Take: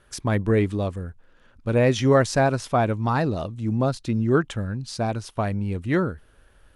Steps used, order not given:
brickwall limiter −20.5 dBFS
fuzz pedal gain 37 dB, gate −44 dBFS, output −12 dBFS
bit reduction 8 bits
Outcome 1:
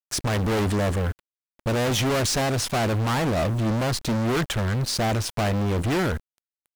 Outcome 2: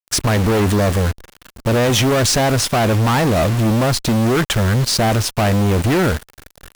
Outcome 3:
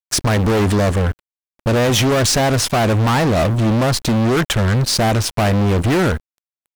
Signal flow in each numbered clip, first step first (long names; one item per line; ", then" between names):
fuzz pedal, then brickwall limiter, then bit reduction
brickwall limiter, then bit reduction, then fuzz pedal
brickwall limiter, then fuzz pedal, then bit reduction